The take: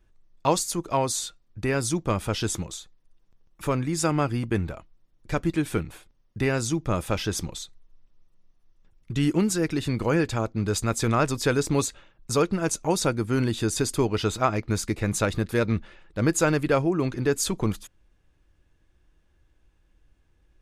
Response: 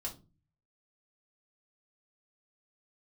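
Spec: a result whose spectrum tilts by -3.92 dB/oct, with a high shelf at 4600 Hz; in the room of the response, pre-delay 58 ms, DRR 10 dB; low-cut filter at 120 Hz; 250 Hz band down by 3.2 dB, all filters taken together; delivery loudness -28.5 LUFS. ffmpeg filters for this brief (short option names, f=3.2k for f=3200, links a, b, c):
-filter_complex "[0:a]highpass=120,equalizer=f=250:t=o:g=-4,highshelf=f=4.6k:g=3.5,asplit=2[a][b];[1:a]atrim=start_sample=2205,adelay=58[c];[b][c]afir=irnorm=-1:irlink=0,volume=-9.5dB[d];[a][d]amix=inputs=2:normalize=0,volume=-2dB"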